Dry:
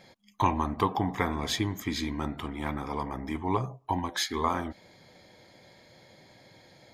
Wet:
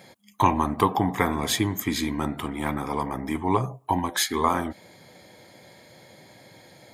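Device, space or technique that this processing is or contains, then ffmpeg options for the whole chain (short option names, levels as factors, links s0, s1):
budget condenser microphone: -af "highpass=87,highshelf=f=7100:t=q:w=1.5:g=7,volume=1.88"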